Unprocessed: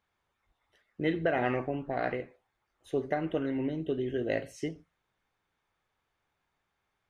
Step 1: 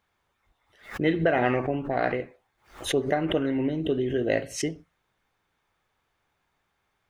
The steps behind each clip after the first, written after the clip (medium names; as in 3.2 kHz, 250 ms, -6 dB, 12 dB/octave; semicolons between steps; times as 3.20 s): swell ahead of each attack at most 140 dB/s; trim +5.5 dB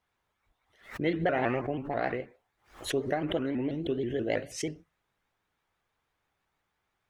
vibrato with a chosen wave saw up 6.2 Hz, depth 160 cents; trim -5 dB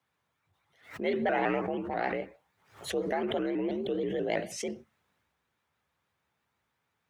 frequency shift +60 Hz; transient shaper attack -4 dB, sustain +4 dB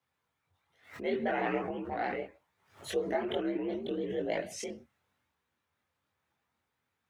chorus voices 6, 0.66 Hz, delay 23 ms, depth 2.3 ms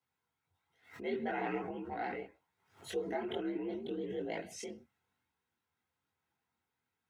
comb of notches 590 Hz; trim -4 dB